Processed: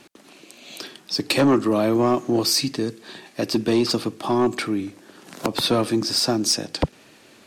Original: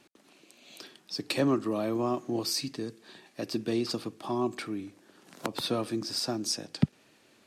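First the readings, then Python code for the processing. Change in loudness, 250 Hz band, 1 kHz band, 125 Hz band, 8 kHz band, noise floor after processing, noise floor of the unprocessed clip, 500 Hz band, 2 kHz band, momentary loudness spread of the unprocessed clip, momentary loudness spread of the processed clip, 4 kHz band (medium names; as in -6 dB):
+10.0 dB, +9.5 dB, +10.5 dB, +7.0 dB, +10.5 dB, -51 dBFS, -63 dBFS, +10.0 dB, +10.5 dB, 12 LU, 16 LU, +10.5 dB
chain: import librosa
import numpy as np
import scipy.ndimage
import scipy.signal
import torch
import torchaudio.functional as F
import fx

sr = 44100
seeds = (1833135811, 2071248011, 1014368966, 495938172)

y = fx.fold_sine(x, sr, drive_db=10, ceiling_db=-9.0)
y = F.gain(torch.from_numpy(y), -2.5).numpy()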